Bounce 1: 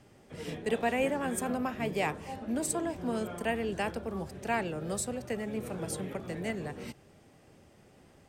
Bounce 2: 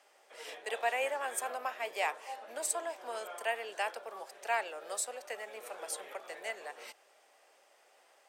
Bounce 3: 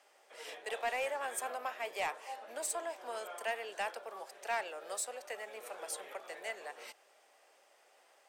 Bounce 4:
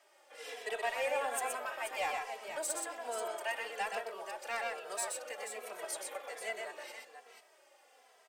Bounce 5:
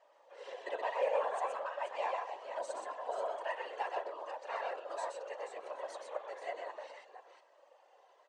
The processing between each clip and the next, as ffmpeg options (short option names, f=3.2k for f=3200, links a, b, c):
-af "highpass=f=580:w=0.5412,highpass=f=580:w=1.3066"
-af "asoftclip=type=tanh:threshold=-27dB,volume=-1dB"
-filter_complex "[0:a]asplit=2[a][b];[b]aecho=0:1:124|483:0.631|0.355[c];[a][c]amix=inputs=2:normalize=0,asplit=2[d][e];[e]adelay=2.7,afreqshift=-1.2[f];[d][f]amix=inputs=2:normalize=1,volume=3dB"
-af "afftfilt=real='hypot(re,im)*cos(2*PI*random(0))':imag='hypot(re,im)*sin(2*PI*random(1))':win_size=512:overlap=0.75,highpass=440,equalizer=f=550:t=q:w=4:g=8,equalizer=f=1k:t=q:w=4:g=8,equalizer=f=1.4k:t=q:w=4:g=-5,equalizer=f=2.3k:t=q:w=4:g=-9,equalizer=f=3.4k:t=q:w=4:g=-5,equalizer=f=5.1k:t=q:w=4:g=-10,lowpass=f=5.5k:w=0.5412,lowpass=f=5.5k:w=1.3066,volume=4dB"